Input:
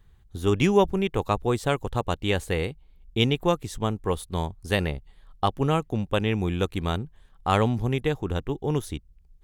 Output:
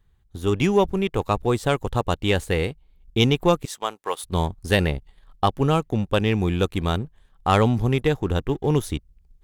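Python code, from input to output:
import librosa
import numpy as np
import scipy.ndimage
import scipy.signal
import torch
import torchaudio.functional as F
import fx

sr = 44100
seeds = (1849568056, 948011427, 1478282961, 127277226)

y = fx.highpass(x, sr, hz=690.0, slope=12, at=(3.65, 4.24))
y = fx.rider(y, sr, range_db=4, speed_s=2.0)
y = fx.leveller(y, sr, passes=1)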